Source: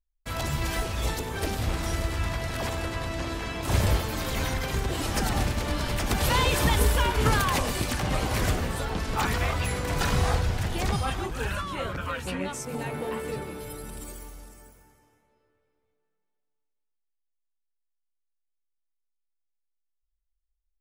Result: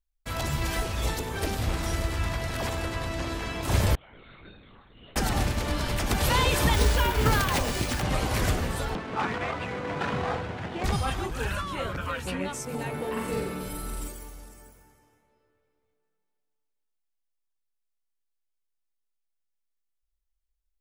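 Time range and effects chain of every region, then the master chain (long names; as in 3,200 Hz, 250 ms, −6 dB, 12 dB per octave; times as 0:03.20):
0:03.95–0:05.16: stiff-string resonator 300 Hz, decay 0.82 s, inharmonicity 0.002 + linear-prediction vocoder at 8 kHz whisper
0:06.74–0:08.03: notch filter 1,100 Hz, Q 14 + bad sample-rate conversion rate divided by 3×, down none, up hold
0:08.95–0:10.84: running median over 9 samples + high-pass filter 170 Hz + high-frequency loss of the air 90 metres
0:13.12–0:14.08: double-tracking delay 44 ms −2 dB + flutter between parallel walls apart 8.3 metres, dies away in 0.5 s
whole clip: no processing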